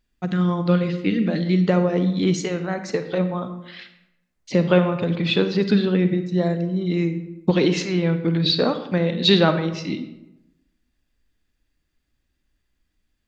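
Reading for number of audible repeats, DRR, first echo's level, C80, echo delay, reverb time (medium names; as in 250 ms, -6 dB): no echo, 9.0 dB, no echo, 12.5 dB, no echo, 0.95 s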